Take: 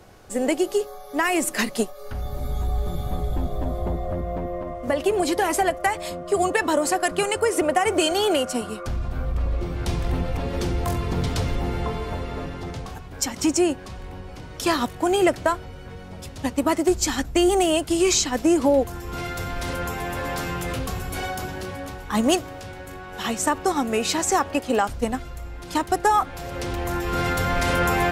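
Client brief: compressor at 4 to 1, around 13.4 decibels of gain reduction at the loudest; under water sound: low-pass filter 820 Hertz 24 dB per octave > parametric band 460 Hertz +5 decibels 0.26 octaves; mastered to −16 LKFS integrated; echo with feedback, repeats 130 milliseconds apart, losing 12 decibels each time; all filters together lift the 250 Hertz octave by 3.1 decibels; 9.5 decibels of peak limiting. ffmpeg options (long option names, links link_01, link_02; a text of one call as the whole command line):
ffmpeg -i in.wav -af "equalizer=frequency=250:width_type=o:gain=4,acompressor=threshold=-30dB:ratio=4,alimiter=limit=-24dB:level=0:latency=1,lowpass=frequency=820:width=0.5412,lowpass=frequency=820:width=1.3066,equalizer=frequency=460:width_type=o:width=0.26:gain=5,aecho=1:1:130|260|390:0.251|0.0628|0.0157,volume=18.5dB" out.wav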